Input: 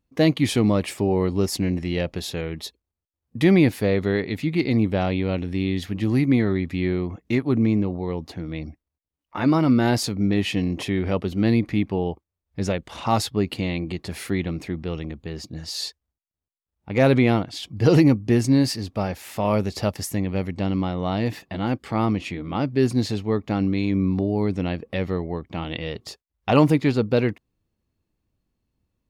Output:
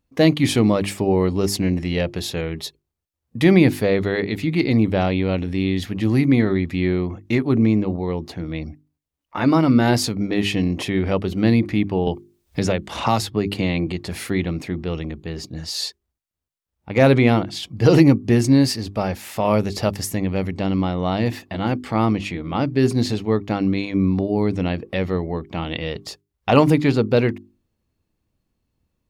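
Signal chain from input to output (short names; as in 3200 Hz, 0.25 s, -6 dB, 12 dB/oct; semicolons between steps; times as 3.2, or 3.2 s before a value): notches 50/100/150/200/250/300/350/400 Hz; 12.07–13.87 three-band squash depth 70%; gain +3.5 dB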